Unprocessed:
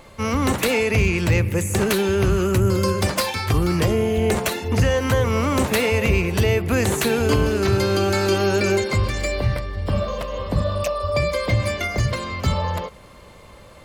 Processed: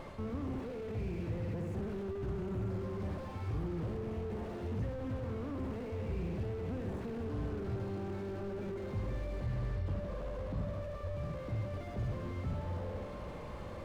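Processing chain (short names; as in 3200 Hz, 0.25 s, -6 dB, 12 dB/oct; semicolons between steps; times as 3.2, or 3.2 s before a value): LPF 2100 Hz 6 dB/oct; flutter echo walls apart 11.2 m, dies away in 0.75 s; reverse; compressor, threshold -29 dBFS, peak gain reduction 15.5 dB; reverse; limiter -29 dBFS, peak gain reduction 9 dB; on a send at -21.5 dB: reverb RT60 1.2 s, pre-delay 6 ms; on the sum: slew limiter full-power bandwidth 4.1 Hz; gain +1 dB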